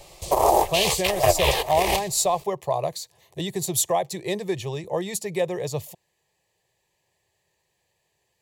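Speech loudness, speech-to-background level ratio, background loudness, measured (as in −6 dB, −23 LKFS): −26.0 LKFS, −4.0 dB, −22.0 LKFS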